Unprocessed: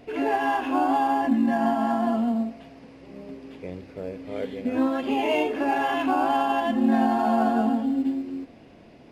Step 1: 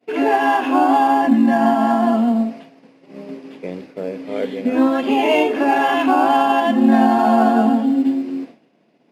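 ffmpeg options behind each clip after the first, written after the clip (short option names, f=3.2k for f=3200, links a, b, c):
-af "agate=range=-33dB:threshold=-38dB:ratio=3:detection=peak,highpass=f=160:w=0.5412,highpass=f=160:w=1.3066,volume=8dB"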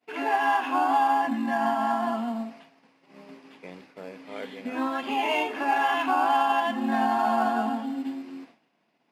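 -af "lowshelf=f=690:t=q:w=1.5:g=-7.5,volume=-6.5dB"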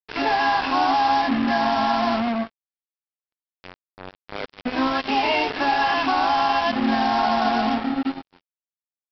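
-af "alimiter=limit=-18dB:level=0:latency=1:release=83,aresample=11025,acrusher=bits=4:mix=0:aa=0.5,aresample=44100,volume=6dB"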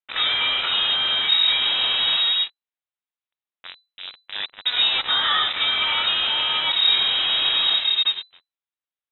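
-filter_complex "[0:a]acrossover=split=300|510|1700[a][b][c][d];[c]asoftclip=type=tanh:threshold=-30dB[e];[a][b][e][d]amix=inputs=4:normalize=0,lowpass=f=3.4k:t=q:w=0.5098,lowpass=f=3.4k:t=q:w=0.6013,lowpass=f=3.4k:t=q:w=0.9,lowpass=f=3.4k:t=q:w=2.563,afreqshift=-4000,volume=3.5dB"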